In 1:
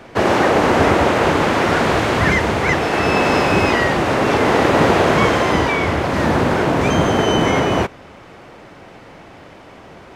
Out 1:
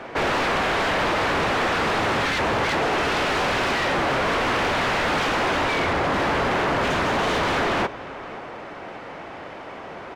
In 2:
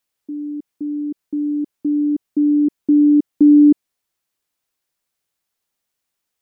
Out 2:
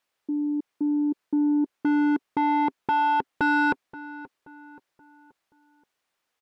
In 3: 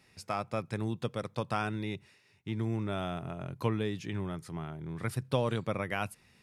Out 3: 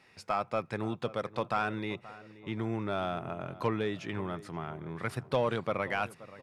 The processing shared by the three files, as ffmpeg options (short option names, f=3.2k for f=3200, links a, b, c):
-filter_complex "[0:a]aeval=exprs='0.158*(abs(mod(val(0)/0.158+3,4)-2)-1)':c=same,asplit=2[a][b];[b]highpass=f=720:p=1,volume=13dB,asoftclip=type=tanh:threshold=-16dB[c];[a][c]amix=inputs=2:normalize=0,lowpass=f=1.7k:p=1,volume=-6dB,asplit=2[d][e];[e]adelay=528,lowpass=f=1.9k:p=1,volume=-17dB,asplit=2[f][g];[g]adelay=528,lowpass=f=1.9k:p=1,volume=0.45,asplit=2[h][i];[i]adelay=528,lowpass=f=1.9k:p=1,volume=0.45,asplit=2[j][k];[k]adelay=528,lowpass=f=1.9k:p=1,volume=0.45[l];[d][f][h][j][l]amix=inputs=5:normalize=0"